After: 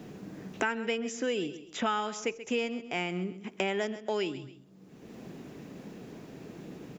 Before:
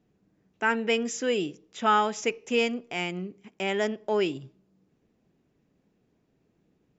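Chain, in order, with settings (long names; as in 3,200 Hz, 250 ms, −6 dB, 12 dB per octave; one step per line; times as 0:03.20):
on a send: repeating echo 132 ms, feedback 22%, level −16 dB
on the sum: multiband upward and downward compressor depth 100%
level −5 dB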